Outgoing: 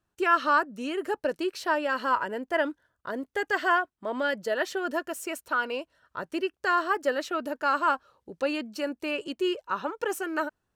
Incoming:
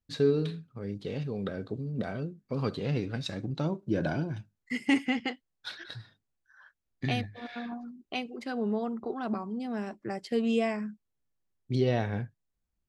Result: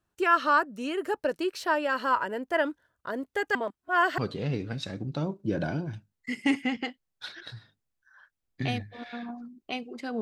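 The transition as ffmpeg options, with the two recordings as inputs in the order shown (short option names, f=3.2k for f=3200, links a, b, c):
-filter_complex "[0:a]apad=whole_dur=10.21,atrim=end=10.21,asplit=2[a][b];[a]atrim=end=3.552[c];[b]atrim=start=3.548:end=4.182,asetpts=PTS-STARTPTS,areverse[d];[1:a]atrim=start=2.608:end=8.64[e];[c][d]acrossfade=d=0.004:c1=hsin:c2=hsin[f];[f][e]acrossfade=d=0.004:c1=hsin:c2=hsin"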